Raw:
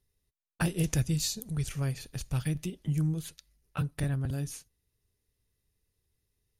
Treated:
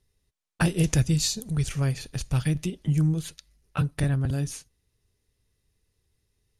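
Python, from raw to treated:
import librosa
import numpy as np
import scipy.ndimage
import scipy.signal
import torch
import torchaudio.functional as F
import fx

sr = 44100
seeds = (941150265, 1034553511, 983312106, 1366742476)

y = scipy.signal.sosfilt(scipy.signal.butter(2, 10000.0, 'lowpass', fs=sr, output='sos'), x)
y = y * librosa.db_to_amplitude(6.0)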